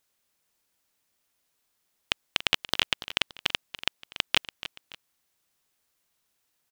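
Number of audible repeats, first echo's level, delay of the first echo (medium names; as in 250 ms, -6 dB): 2, -14.0 dB, 286 ms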